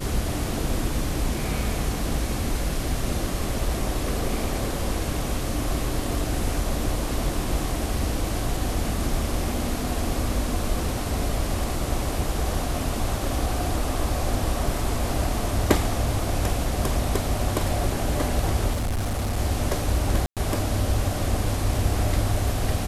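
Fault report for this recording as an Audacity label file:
18.720000	19.370000	clipped -22 dBFS
20.260000	20.370000	gap 0.107 s

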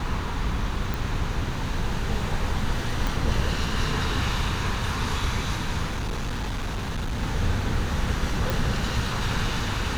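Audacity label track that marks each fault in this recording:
0.940000	0.940000	pop
3.070000	3.070000	pop
5.870000	7.230000	clipped -25 dBFS
8.500000	8.500000	pop

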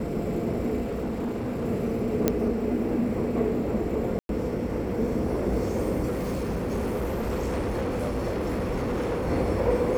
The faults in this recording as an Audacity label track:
0.810000	1.650000	clipped -26 dBFS
2.280000	2.280000	pop -7 dBFS
4.190000	4.290000	gap 0.102 s
6.070000	9.290000	clipped -24.5 dBFS

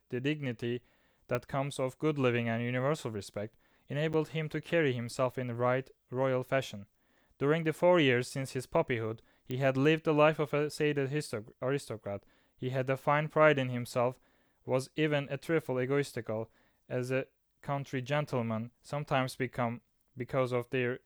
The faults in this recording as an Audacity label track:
1.350000	1.350000	pop -19 dBFS
4.130000	4.140000	gap 7.9 ms
9.510000	9.510000	pop -24 dBFS

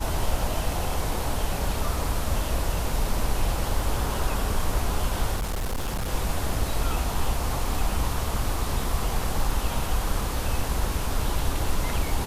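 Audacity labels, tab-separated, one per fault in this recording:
5.370000	6.100000	clipped -24 dBFS

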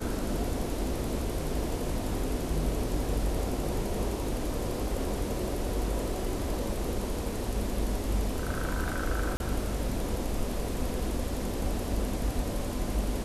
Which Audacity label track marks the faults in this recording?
9.370000	9.400000	gap 31 ms

